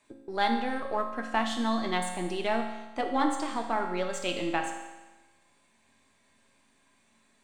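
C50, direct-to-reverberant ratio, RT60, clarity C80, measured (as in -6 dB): 5.5 dB, 2.0 dB, 1.1 s, 7.5 dB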